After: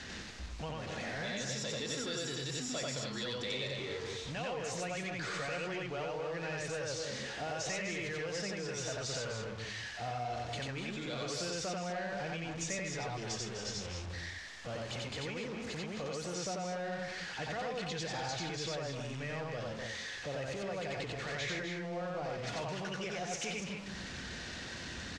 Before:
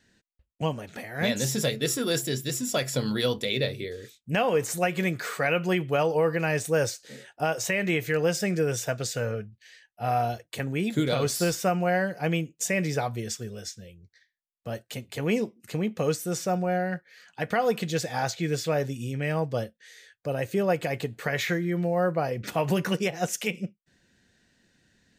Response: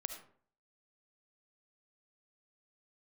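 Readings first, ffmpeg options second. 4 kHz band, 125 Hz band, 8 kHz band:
-5.0 dB, -11.5 dB, -8.0 dB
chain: -filter_complex "[0:a]aeval=exprs='val(0)+0.5*0.0237*sgn(val(0))':c=same,asplit=2[s0][s1];[1:a]atrim=start_sample=2205,lowpass=6900[s2];[s1][s2]afir=irnorm=-1:irlink=0,volume=0.299[s3];[s0][s3]amix=inputs=2:normalize=0,acompressor=threshold=0.0631:ratio=6,equalizer=f=65:t=o:w=1:g=10.5,aecho=1:1:90.38|250.7|285.7:0.891|0.355|0.355,acrossover=split=670|3500[s4][s5][s6];[s4]alimiter=level_in=1.06:limit=0.0631:level=0:latency=1,volume=0.944[s7];[s5]asoftclip=type=tanh:threshold=0.0316[s8];[s7][s8][s6]amix=inputs=3:normalize=0,lowpass=f=6600:w=0.5412,lowpass=f=6600:w=1.3066,lowshelf=f=350:g=-5.5,bandreject=f=50:t=h:w=6,bandreject=f=100:t=h:w=6,volume=0.398"

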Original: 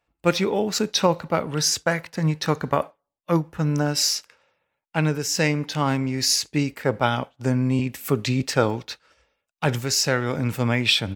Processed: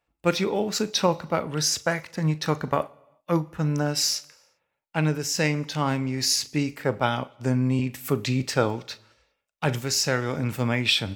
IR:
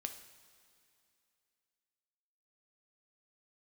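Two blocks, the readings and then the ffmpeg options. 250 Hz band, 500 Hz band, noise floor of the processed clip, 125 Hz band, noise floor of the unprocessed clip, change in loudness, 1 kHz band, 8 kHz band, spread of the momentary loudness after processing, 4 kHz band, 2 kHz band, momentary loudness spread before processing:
-2.5 dB, -2.5 dB, -79 dBFS, -2.0 dB, -81 dBFS, -2.5 dB, -2.5 dB, -2.5 dB, 6 LU, -2.5 dB, -2.5 dB, 5 LU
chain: -filter_complex "[0:a]asplit=2[s0][s1];[s1]asuperstop=centerf=1600:order=4:qfactor=6.7[s2];[1:a]atrim=start_sample=2205,afade=t=out:st=0.41:d=0.01,atrim=end_sample=18522,adelay=39[s3];[s2][s3]afir=irnorm=-1:irlink=0,volume=0.224[s4];[s0][s4]amix=inputs=2:normalize=0,volume=0.75"

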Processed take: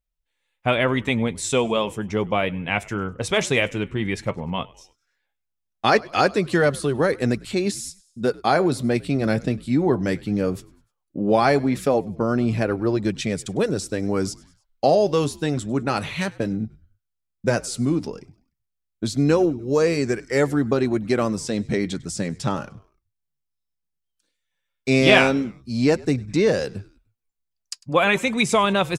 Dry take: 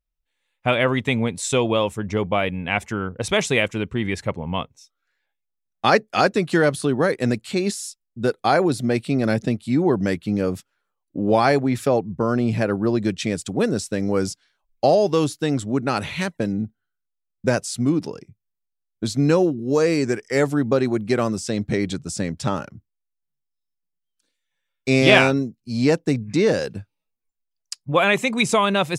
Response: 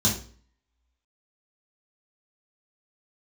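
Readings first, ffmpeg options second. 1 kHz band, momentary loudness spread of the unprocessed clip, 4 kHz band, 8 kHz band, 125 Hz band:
-0.5 dB, 10 LU, -1.0 dB, -1.0 dB, -1.0 dB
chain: -filter_complex "[0:a]flanger=delay=1.5:depth=5.9:regen=-71:speed=0.15:shape=triangular,asplit=2[s0][s1];[s1]asplit=3[s2][s3][s4];[s2]adelay=100,afreqshift=-69,volume=0.0708[s5];[s3]adelay=200,afreqshift=-138,volume=0.0355[s6];[s4]adelay=300,afreqshift=-207,volume=0.0178[s7];[s5][s6][s7]amix=inputs=3:normalize=0[s8];[s0][s8]amix=inputs=2:normalize=0,volume=1.5"

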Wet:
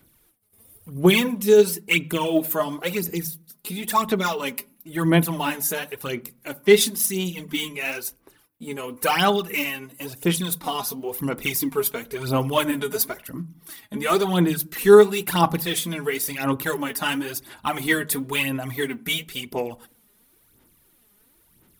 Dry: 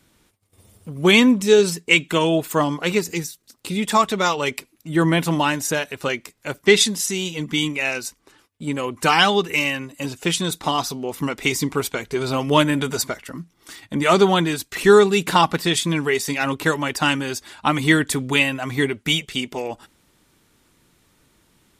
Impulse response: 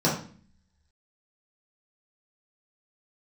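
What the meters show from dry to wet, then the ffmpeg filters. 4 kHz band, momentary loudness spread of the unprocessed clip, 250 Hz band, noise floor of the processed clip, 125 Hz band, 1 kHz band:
-5.5 dB, 13 LU, -3.5 dB, -61 dBFS, -2.5 dB, -4.5 dB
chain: -filter_complex "[0:a]aphaser=in_gain=1:out_gain=1:delay=4.9:decay=0.63:speed=0.97:type=sinusoidal,aexciter=amount=6.2:drive=5:freq=10000,asplit=2[s0][s1];[1:a]atrim=start_sample=2205,lowpass=2400[s2];[s1][s2]afir=irnorm=-1:irlink=0,volume=0.0299[s3];[s0][s3]amix=inputs=2:normalize=0,volume=0.422"

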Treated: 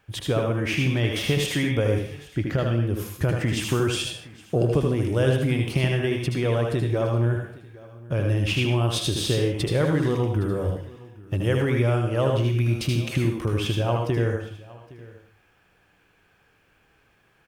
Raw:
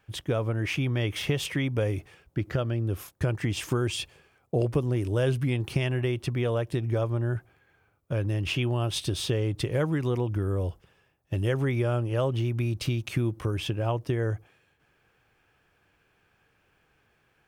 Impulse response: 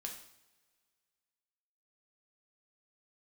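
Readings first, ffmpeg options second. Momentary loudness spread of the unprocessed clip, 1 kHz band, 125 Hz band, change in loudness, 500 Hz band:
5 LU, +5.0 dB, +4.0 dB, +4.5 dB, +5.0 dB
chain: -filter_complex "[0:a]aecho=1:1:814:0.0891,asplit=2[s0][s1];[1:a]atrim=start_sample=2205,afade=t=out:st=0.23:d=0.01,atrim=end_sample=10584,adelay=77[s2];[s1][s2]afir=irnorm=-1:irlink=0,volume=1.06[s3];[s0][s3]amix=inputs=2:normalize=0,volume=1.41"

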